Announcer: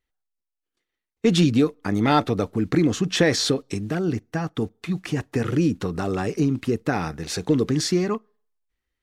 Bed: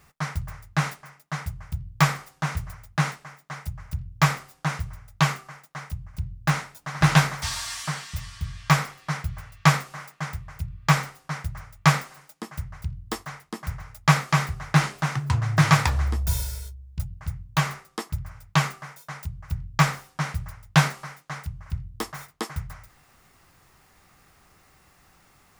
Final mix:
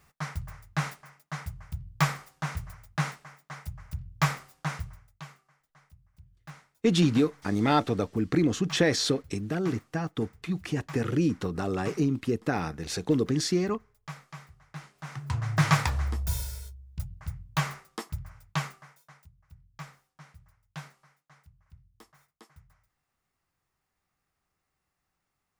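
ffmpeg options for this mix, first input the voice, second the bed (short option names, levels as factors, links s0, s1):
-filter_complex "[0:a]adelay=5600,volume=0.596[s0];[1:a]volume=4.47,afade=t=out:st=4.82:d=0.39:silence=0.125893,afade=t=in:st=14.94:d=0.53:silence=0.11885,afade=t=out:st=18.04:d=1.26:silence=0.112202[s1];[s0][s1]amix=inputs=2:normalize=0"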